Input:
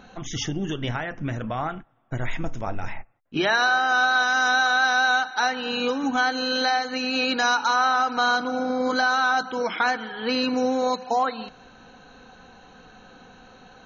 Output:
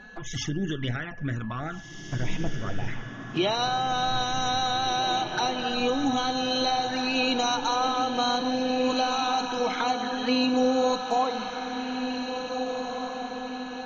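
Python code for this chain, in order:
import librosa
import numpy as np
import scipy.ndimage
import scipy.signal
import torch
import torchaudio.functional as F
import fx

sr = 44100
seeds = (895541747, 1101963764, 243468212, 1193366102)

y = fx.env_flanger(x, sr, rest_ms=5.4, full_db=-21.5)
y = fx.echo_diffused(y, sr, ms=1858, feedback_pct=51, wet_db=-6.5)
y = y + 10.0 ** (-46.0 / 20.0) * np.sin(2.0 * np.pi * 1700.0 * np.arange(len(y)) / sr)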